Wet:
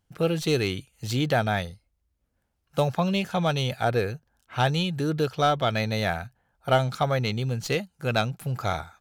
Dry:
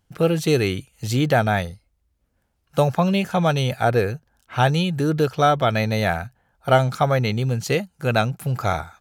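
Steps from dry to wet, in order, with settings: tracing distortion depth 0.024 ms; dynamic bell 3.7 kHz, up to +5 dB, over -43 dBFS, Q 1.4; trim -5.5 dB

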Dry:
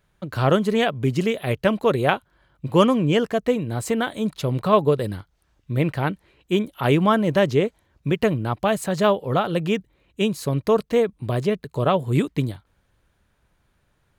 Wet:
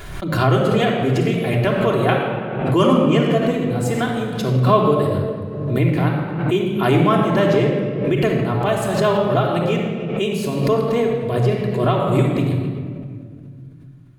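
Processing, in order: simulated room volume 3600 m³, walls mixed, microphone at 3.2 m; swell ahead of each attack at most 47 dB/s; trim -2.5 dB

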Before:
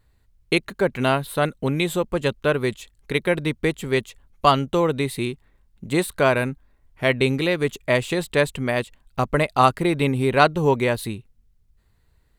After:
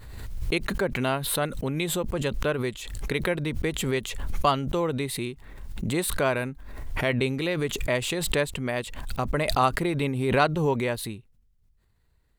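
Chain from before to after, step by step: swell ahead of each attack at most 40 dB/s; trim -6.5 dB

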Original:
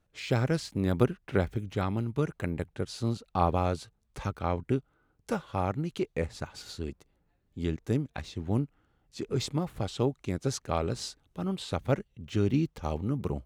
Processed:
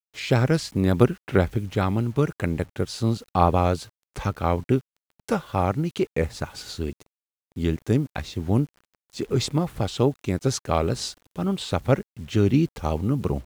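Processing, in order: bit crusher 10-bit; vibrato 3.5 Hz 34 cents; trim +7 dB

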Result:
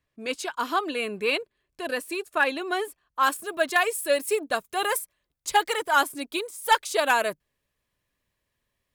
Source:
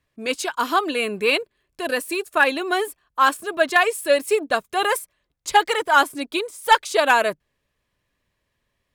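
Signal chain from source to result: treble shelf 8.2 kHz -3 dB, from 3.23 s +9 dB; trim -5.5 dB

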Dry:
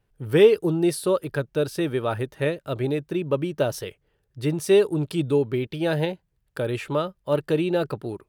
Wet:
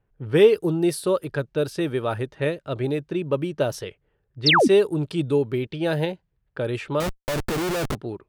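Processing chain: level-controlled noise filter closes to 2 kHz, open at -20 dBFS; 4.46–4.68 s: painted sound fall 200–5900 Hz -16 dBFS; 7.00–7.95 s: Schmitt trigger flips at -33 dBFS

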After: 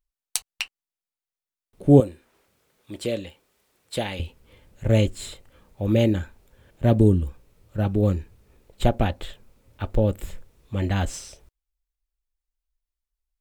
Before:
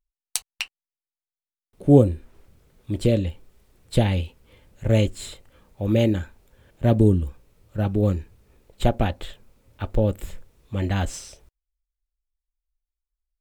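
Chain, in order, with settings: 2.00–4.20 s: high-pass 680 Hz 6 dB/octave

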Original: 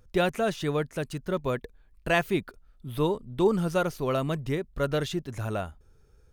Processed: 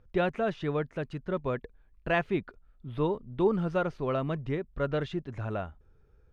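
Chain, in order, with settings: low-pass 2.6 kHz 12 dB/octave; trim -2.5 dB

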